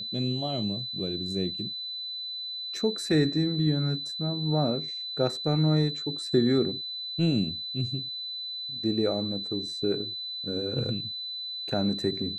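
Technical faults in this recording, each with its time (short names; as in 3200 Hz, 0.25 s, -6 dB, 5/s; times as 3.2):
tone 4000 Hz -33 dBFS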